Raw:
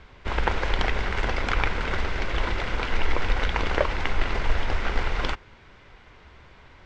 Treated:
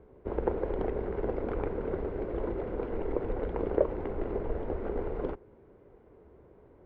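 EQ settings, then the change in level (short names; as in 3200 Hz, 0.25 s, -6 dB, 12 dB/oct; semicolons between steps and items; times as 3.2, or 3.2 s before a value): band-pass 420 Hz, Q 2.2; tilt -3.5 dB/oct; 0.0 dB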